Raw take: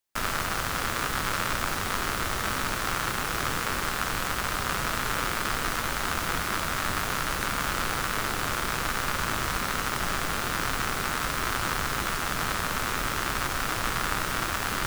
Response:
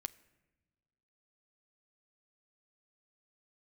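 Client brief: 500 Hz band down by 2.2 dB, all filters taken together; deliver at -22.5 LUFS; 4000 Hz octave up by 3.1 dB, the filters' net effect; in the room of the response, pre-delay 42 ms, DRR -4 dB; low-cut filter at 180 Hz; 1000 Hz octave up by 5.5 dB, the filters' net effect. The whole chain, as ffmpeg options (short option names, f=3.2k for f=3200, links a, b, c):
-filter_complex "[0:a]highpass=180,equalizer=f=500:t=o:g=-5.5,equalizer=f=1k:t=o:g=8,equalizer=f=4k:t=o:g=3.5,asplit=2[a][b];[1:a]atrim=start_sample=2205,adelay=42[c];[b][c]afir=irnorm=-1:irlink=0,volume=6.5dB[d];[a][d]amix=inputs=2:normalize=0,volume=-3dB"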